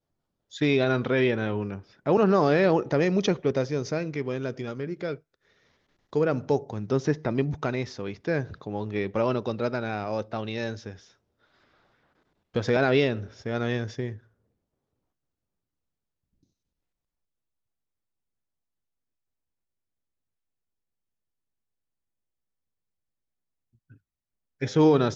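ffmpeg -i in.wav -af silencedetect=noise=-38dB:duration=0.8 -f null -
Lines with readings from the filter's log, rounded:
silence_start: 5.16
silence_end: 6.13 | silence_duration: 0.97
silence_start: 10.95
silence_end: 12.55 | silence_duration: 1.59
silence_start: 14.16
silence_end: 24.61 | silence_duration: 10.45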